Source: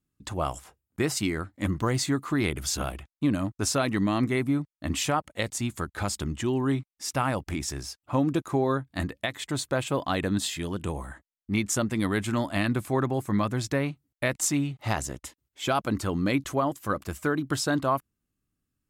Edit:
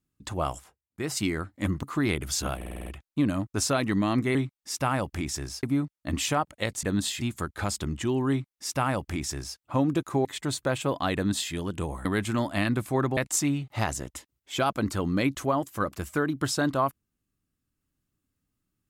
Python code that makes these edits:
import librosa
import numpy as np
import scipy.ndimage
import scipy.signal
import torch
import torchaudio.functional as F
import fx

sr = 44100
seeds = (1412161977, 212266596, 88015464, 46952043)

y = fx.edit(x, sr, fx.fade_down_up(start_s=0.52, length_s=0.68, db=-13.5, fade_s=0.27),
    fx.cut(start_s=1.83, length_s=0.35),
    fx.stutter(start_s=2.91, slice_s=0.05, count=7),
    fx.duplicate(start_s=6.69, length_s=1.28, to_s=4.4),
    fx.cut(start_s=8.64, length_s=0.67),
    fx.duplicate(start_s=10.21, length_s=0.38, to_s=5.6),
    fx.cut(start_s=11.11, length_s=0.93),
    fx.cut(start_s=13.16, length_s=1.1), tone=tone)